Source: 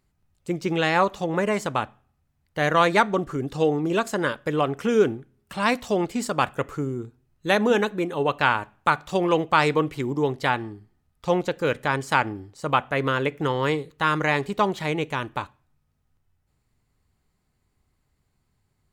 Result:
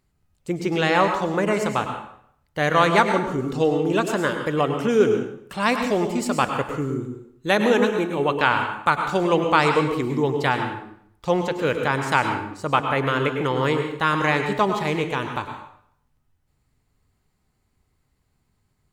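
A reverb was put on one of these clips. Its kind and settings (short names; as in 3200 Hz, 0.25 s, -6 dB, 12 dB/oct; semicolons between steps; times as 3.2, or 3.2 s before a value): plate-style reverb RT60 0.66 s, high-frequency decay 0.85×, pre-delay 90 ms, DRR 5.5 dB; gain +1 dB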